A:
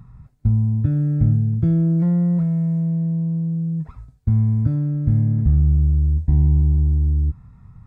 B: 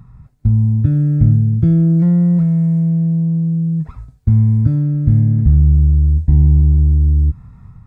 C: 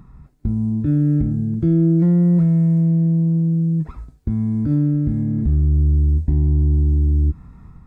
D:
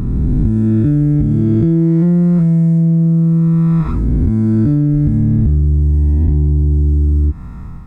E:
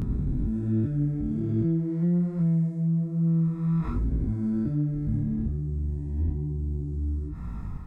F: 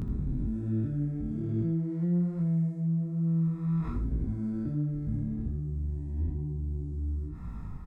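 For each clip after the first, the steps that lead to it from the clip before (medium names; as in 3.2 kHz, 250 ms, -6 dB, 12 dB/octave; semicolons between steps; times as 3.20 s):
dynamic bell 830 Hz, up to -5 dB, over -40 dBFS, Q 0.72; level rider gain up to 4 dB; trim +2.5 dB
peaking EQ 330 Hz +9 dB 0.6 oct; peak limiter -8 dBFS, peak gain reduction 7 dB; peaking EQ 110 Hz -10.5 dB 0.56 oct
reverse spectral sustain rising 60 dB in 2.37 s; compression, threshold -18 dBFS, peak gain reduction 7 dB; trim +9 dB
peak limiter -14.5 dBFS, peak gain reduction 10.5 dB; chorus 1.2 Hz, delay 18 ms, depth 5.4 ms; trim -3.5 dB
delay 80 ms -12.5 dB; trim -4.5 dB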